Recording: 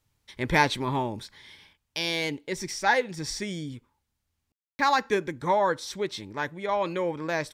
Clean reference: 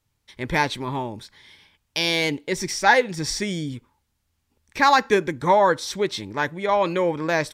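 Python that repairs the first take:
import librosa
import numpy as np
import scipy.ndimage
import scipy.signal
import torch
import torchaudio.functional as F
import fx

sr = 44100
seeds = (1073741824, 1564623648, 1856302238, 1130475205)

y = fx.fix_ambience(x, sr, seeds[0], print_start_s=1.46, print_end_s=1.96, start_s=4.52, end_s=4.79)
y = fx.gain(y, sr, db=fx.steps((0.0, 0.0), (1.73, 6.5)))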